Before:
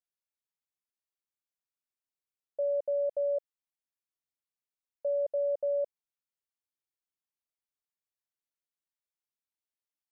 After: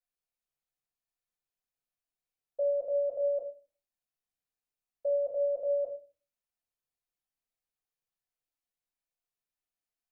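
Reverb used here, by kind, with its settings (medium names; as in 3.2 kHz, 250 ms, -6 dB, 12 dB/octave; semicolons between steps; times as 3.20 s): simulated room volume 140 m³, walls furnished, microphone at 5.3 m; trim -11 dB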